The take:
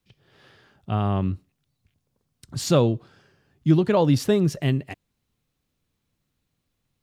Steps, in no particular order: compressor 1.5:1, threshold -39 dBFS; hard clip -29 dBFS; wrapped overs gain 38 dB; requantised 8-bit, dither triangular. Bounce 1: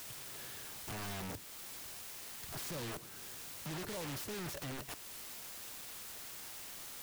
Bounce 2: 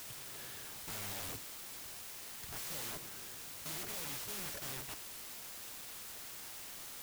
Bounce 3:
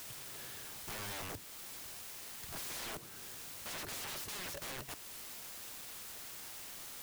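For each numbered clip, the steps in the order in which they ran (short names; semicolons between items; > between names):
requantised > compressor > hard clip > wrapped overs; compressor > hard clip > requantised > wrapped overs; requantised > compressor > wrapped overs > hard clip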